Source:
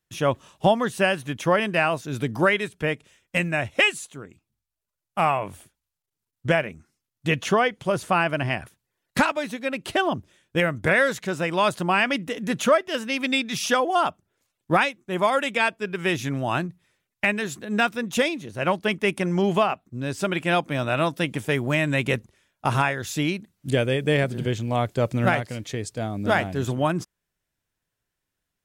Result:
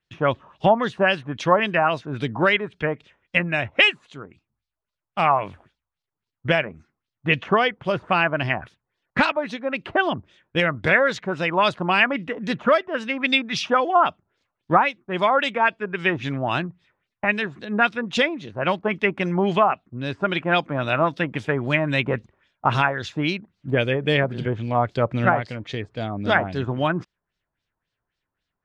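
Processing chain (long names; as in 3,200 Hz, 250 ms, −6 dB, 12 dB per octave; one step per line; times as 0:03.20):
auto-filter low-pass sine 3.7 Hz 940–4,700 Hz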